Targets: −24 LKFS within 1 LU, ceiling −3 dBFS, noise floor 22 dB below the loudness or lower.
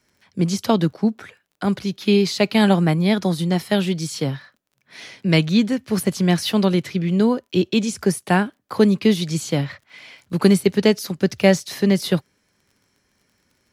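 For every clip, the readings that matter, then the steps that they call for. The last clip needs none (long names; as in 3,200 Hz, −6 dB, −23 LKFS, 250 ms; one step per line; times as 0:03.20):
crackle rate 26 per second; integrated loudness −20.0 LKFS; sample peak −1.5 dBFS; target loudness −24.0 LKFS
→ click removal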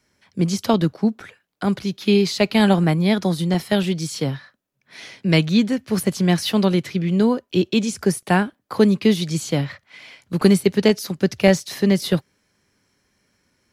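crackle rate 0.15 per second; integrated loudness −20.0 LKFS; sample peak −1.5 dBFS; target loudness −24.0 LKFS
→ level −4 dB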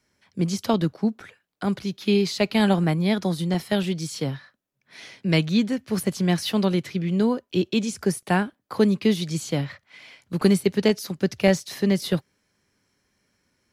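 integrated loudness −24.0 LKFS; sample peak −5.5 dBFS; background noise floor −74 dBFS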